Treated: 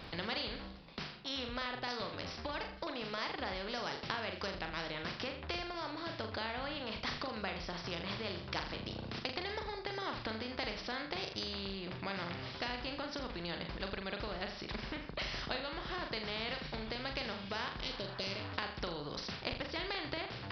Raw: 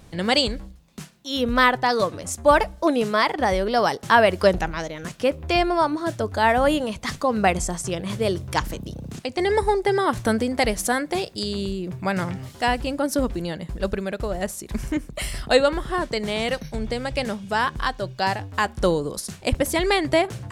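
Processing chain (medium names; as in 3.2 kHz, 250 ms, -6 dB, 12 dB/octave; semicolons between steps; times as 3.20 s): spectral replace 17.80–18.50 s, 660–2000 Hz; compression, threshold -28 dBFS, peak gain reduction 16.5 dB; resampled via 11.025 kHz; flutter echo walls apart 7 m, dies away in 0.32 s; spectrum-flattening compressor 2:1; trim -4.5 dB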